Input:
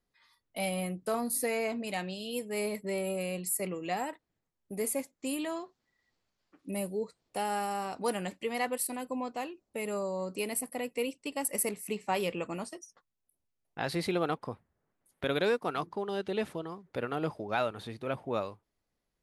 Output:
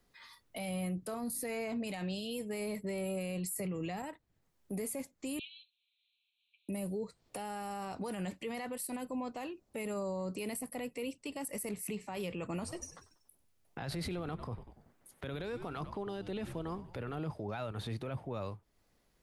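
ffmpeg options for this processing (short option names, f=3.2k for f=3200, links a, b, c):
-filter_complex "[0:a]asettb=1/sr,asplit=3[a][b][c];[a]atrim=end=5.394[d];[b]atrim=start=5.39:end=6.69,asetpts=PTS-STARTPTS,afade=t=in:d=0.004:c=qsin,afade=t=out:st=1.296:d=0.004:c=qsin,asuperpass=centerf=3100:order=20:qfactor=1.7[e];[c]atrim=start=6.686[f];[d][e]acrossfade=d=0.004:c1=hsin:c2=qsin[g];[g][f]acrossfade=d=0.004:c1=qsin:c2=hsin,asettb=1/sr,asplit=3[h][i][j];[h]atrim=end=12.444[k];[i]atrim=start=12.44:end=17.2,asetpts=PTS-STARTPTS,afade=t=in:d=0.004:c=qsin,afade=t=out:st=4.756:d=0.004:c=qsin,asplit=5[l][m][n][o][p];[m]adelay=95,afreqshift=-89,volume=-19dB[q];[n]adelay=190,afreqshift=-178,volume=-25.7dB[r];[o]adelay=285,afreqshift=-267,volume=-32.5dB[s];[p]adelay=380,afreqshift=-356,volume=-39.2dB[t];[l][q][r][s][t]amix=inputs=5:normalize=0,atrim=end_sample=209916[u];[j]atrim=start=17.196[v];[k][u]acrossfade=d=0.004:c1=hsin:c2=qsin[w];[w][v]acrossfade=d=0.004:c1=qsin:c2=hsin,asplit=3[x][y][z];[x]atrim=end=3.562[aa];[y]atrim=start=3.558:end=4.022,asetpts=PTS-STARTPTS,volume=11dB[ab];[z]atrim=start=4.018[ac];[aa][ab]acrossfade=d=0.004:c1=hsin:c2=hsin[ad];[ad][ac]acrossfade=d=0.004:c1=hsin:c2=hsin,acrossover=split=140[ae][af];[af]acompressor=threshold=-54dB:ratio=2[ag];[ae][ag]amix=inputs=2:normalize=0,alimiter=level_in=17dB:limit=-24dB:level=0:latency=1:release=20,volume=-17dB,volume=10.5dB"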